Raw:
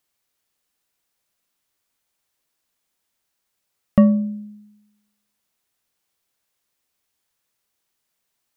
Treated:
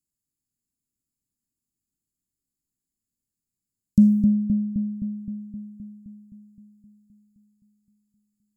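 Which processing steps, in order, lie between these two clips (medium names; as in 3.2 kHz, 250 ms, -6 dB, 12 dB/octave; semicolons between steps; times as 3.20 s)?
local Wiener filter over 15 samples; inverse Chebyshev band-stop 930–2000 Hz, stop band 80 dB; tilt shelf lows -7.5 dB; filtered feedback delay 260 ms, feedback 68%, low-pass 1.2 kHz, level -3 dB; trim +6 dB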